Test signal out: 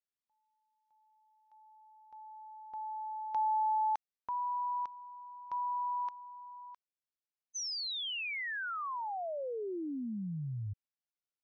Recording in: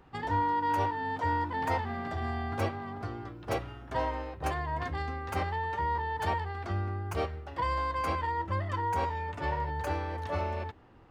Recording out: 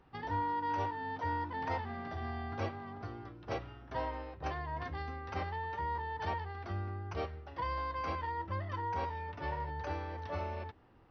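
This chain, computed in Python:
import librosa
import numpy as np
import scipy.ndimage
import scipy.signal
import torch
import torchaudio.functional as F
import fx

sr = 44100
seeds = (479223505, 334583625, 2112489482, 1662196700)

y = fx.brickwall_lowpass(x, sr, high_hz=6200.0)
y = y * 10.0 ** (-6.0 / 20.0)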